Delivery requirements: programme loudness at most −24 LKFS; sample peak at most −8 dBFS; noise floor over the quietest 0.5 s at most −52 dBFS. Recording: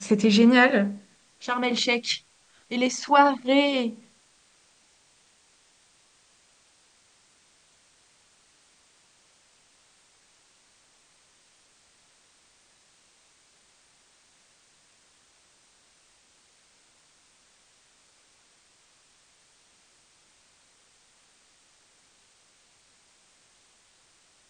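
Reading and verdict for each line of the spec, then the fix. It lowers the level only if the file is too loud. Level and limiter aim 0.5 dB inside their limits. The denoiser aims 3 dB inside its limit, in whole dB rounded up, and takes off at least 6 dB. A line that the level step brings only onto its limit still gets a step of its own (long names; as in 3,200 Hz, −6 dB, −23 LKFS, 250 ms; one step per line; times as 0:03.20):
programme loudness −22.0 LKFS: out of spec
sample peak −5.0 dBFS: out of spec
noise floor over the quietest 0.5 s −62 dBFS: in spec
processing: level −2.5 dB
brickwall limiter −8.5 dBFS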